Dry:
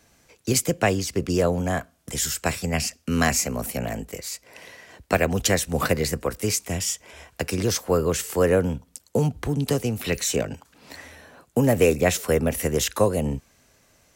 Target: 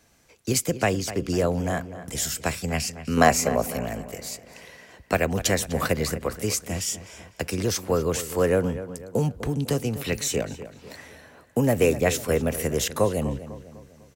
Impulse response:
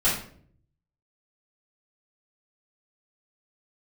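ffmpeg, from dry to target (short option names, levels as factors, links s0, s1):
-filter_complex "[0:a]asettb=1/sr,asplit=3[s0][s1][s2];[s0]atrim=end=3.174[s3];[s1]atrim=start=3.17:end=3.72,asetpts=PTS-STARTPTS,afade=t=in:d=0.004:c=qsin,afade=t=out:st=0.546:d=0.004:c=qsin,equalizer=f=600:w=0.69:g=11[s4];[s2]atrim=start=3.716[s5];[s3][s4]acrossfade=d=0.004:c1=hsin:c2=qsin[s6];[s6][s5]acrossfade=d=0.004:c1=qsin:c2=hsin,asplit=2[s7][s8];[s8]adelay=250,lowpass=f=3000:p=1,volume=0.224,asplit=2[s9][s10];[s10]adelay=250,lowpass=f=3000:p=1,volume=0.46,asplit=2[s11][s12];[s12]adelay=250,lowpass=f=3000:p=1,volume=0.46,asplit=2[s13][s14];[s14]adelay=250,lowpass=f=3000:p=1,volume=0.46,asplit=2[s15][s16];[s16]adelay=250,lowpass=f=3000:p=1,volume=0.46[s17];[s7][s9][s11][s13][s15][s17]amix=inputs=6:normalize=0,volume=0.794"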